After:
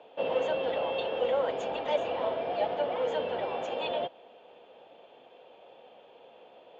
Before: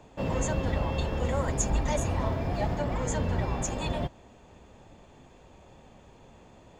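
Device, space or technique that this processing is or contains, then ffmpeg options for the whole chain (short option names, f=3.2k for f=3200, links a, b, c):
phone earpiece: -af "highpass=470,equalizer=f=490:t=q:w=4:g=10,equalizer=f=700:t=q:w=4:g=5,equalizer=f=1.1k:t=q:w=4:g=-4,equalizer=f=1.9k:t=q:w=4:g=-6,equalizer=f=3.1k:t=q:w=4:g=9,lowpass=f=3.5k:w=0.5412,lowpass=f=3.5k:w=1.3066"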